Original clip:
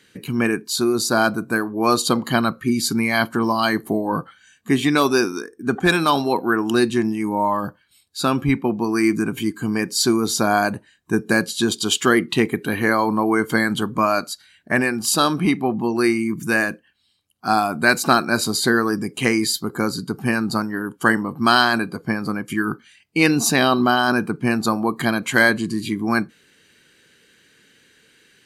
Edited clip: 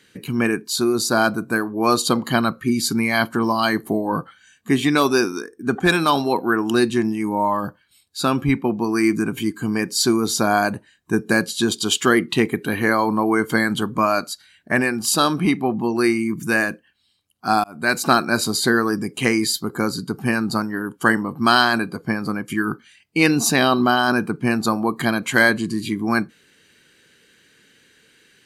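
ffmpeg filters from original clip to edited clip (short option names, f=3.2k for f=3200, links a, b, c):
-filter_complex "[0:a]asplit=2[a][b];[a]atrim=end=17.64,asetpts=PTS-STARTPTS,afade=t=out:st=17.636:d=0.004:c=hsin[c];[b]atrim=start=17.64,asetpts=PTS-STARTPTS,afade=t=in:d=0.54:c=qsin[d];[c][d]concat=n=2:v=0:a=1"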